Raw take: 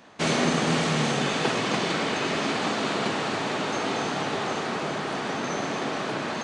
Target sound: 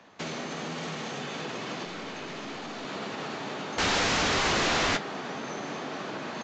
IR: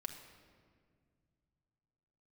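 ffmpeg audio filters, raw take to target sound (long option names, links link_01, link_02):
-filter_complex "[0:a]acrossover=split=360|2800[link_01][link_02][link_03];[link_02]acompressor=mode=upward:threshold=-52dB:ratio=2.5[link_04];[link_01][link_04][link_03]amix=inputs=3:normalize=0,alimiter=limit=-19dB:level=0:latency=1,acrossover=split=120|340[link_05][link_06][link_07];[link_05]acompressor=threshold=-54dB:ratio=4[link_08];[link_06]acompressor=threshold=-36dB:ratio=4[link_09];[link_07]acompressor=threshold=-30dB:ratio=4[link_10];[link_08][link_09][link_10]amix=inputs=3:normalize=0,asettb=1/sr,asplit=3[link_11][link_12][link_13];[link_11]atrim=end=3.784[link_14];[link_12]atrim=start=3.78:end=4.97,asetpts=PTS-STARTPTS,afade=type=in:duration=0.004:curve=qsin,afade=type=out:start_time=1.186:duration=0.004:curve=qsin,aeval=exprs='0.119*sin(PI/2*5.62*val(0)/0.119)':channel_layout=same[link_15];[link_13]atrim=start=4.966[link_16];[link_14][link_15]acrossfade=duration=0.004:curve1=hsin:curve2=qsin[link_17];[link_17][link_16]acrossfade=duration=0.004:curve1=qsin:curve2=hsin,flanger=delay=9.9:depth=4.8:regen=-54:speed=0.99:shape=triangular,asettb=1/sr,asplit=3[link_18][link_19][link_20];[link_18]atrim=end=1.854[link_21];[link_19]atrim=start=1.85:end=2.85,asetpts=PTS-STARTPTS,afade=type=in:duration=0.004:curve=qsin,afade=type=out:start_time=0.996:duration=0.004:curve=qsin,aeval=exprs='(tanh(39.8*val(0)+0.35)-tanh(0.35))/39.8':channel_layout=same[link_22];[link_20]atrim=start=2.846[link_23];[link_21][link_22]acrossfade=duration=0.004:curve1=hsin:curve2=qsin[link_24];[link_24][link_23]acrossfade=duration=0.004:curve1=qsin:curve2=hsin,aresample=16000,aresample=44100"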